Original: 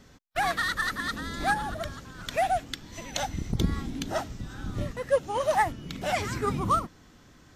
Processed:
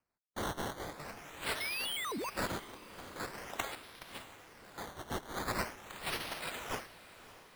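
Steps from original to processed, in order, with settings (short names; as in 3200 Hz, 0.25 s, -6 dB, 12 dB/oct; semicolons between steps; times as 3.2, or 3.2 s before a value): spectral gate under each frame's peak -25 dB weak; gate -58 dBFS, range -24 dB; 1.6–2.3 painted sound rise 2100–4900 Hz -43 dBFS; 3.75–4.78 passive tone stack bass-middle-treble 5-5-5; decimation with a swept rate 12×, swing 100% 0.44 Hz; diffused feedback echo 0.605 s, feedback 50%, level -15.5 dB; 0.78–1.42 detuned doubles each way 48 cents; gain +5 dB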